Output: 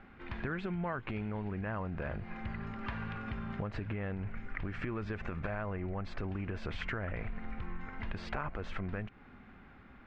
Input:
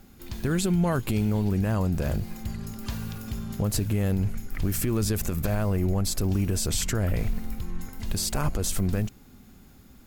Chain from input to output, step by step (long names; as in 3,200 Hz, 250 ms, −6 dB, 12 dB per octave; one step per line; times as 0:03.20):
low-pass filter 2,100 Hz 24 dB per octave
tilt shelving filter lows −8 dB, about 730 Hz
downward compressor, threshold −36 dBFS, peak gain reduction 12.5 dB
level +2 dB